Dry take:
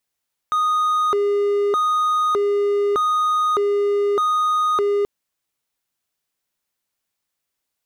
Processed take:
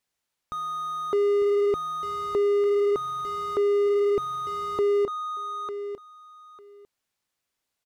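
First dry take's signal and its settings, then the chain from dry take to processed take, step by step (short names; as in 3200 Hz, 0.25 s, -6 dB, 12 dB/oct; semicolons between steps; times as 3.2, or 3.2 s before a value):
siren hi-lo 407–1240 Hz 0.82/s triangle -14 dBFS 4.53 s
high shelf 11000 Hz -8.5 dB; feedback echo 0.9 s, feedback 16%, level -14 dB; slew limiter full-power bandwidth 38 Hz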